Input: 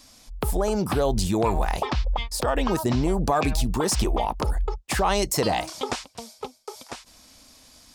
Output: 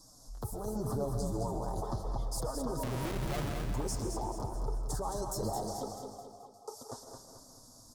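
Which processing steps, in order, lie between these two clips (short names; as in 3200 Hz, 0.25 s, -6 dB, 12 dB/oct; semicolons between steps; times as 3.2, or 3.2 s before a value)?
rattling part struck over -33 dBFS, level -26 dBFS; Chebyshev band-stop 990–5800 Hz, order 2; bell 110 Hz +6.5 dB 1.1 oct; in parallel at +1.5 dB: compressor, threshold -34 dBFS, peak gain reduction 16 dB; on the sum: limiter -17.5 dBFS, peak gain reduction 9 dB; flange 0.83 Hz, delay 6 ms, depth 3.3 ms, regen -1%; 2.83–3.65 Schmitt trigger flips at -30.5 dBFS; 5.88–6.54 vowel filter a; feedback echo 0.217 s, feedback 45%, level -6 dB; on a send at -7.5 dB: reverb RT60 1.0 s, pre-delay 95 ms; on the sum: gain -8 dB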